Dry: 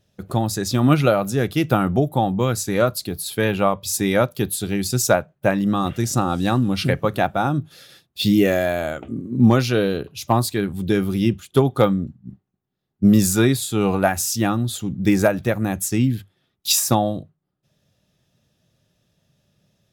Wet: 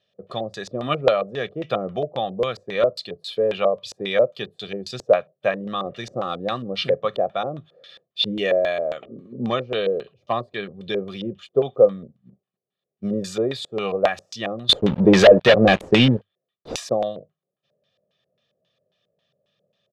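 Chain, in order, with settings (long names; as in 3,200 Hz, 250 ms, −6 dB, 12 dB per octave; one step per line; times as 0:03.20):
high-pass filter 260 Hz 12 dB per octave
comb filter 1.7 ms, depth 67%
0:14.69–0:16.76: leveller curve on the samples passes 5
auto-filter low-pass square 3.7 Hz 510–3,500 Hz
level −5.5 dB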